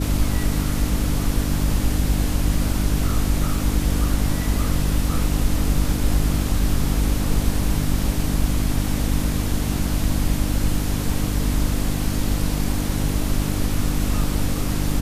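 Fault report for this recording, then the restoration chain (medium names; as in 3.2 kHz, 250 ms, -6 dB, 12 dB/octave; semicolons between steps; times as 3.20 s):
hum 50 Hz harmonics 6 -25 dBFS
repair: de-hum 50 Hz, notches 6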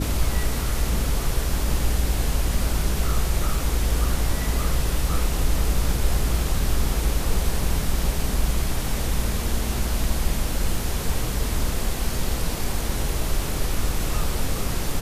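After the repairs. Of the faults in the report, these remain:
nothing left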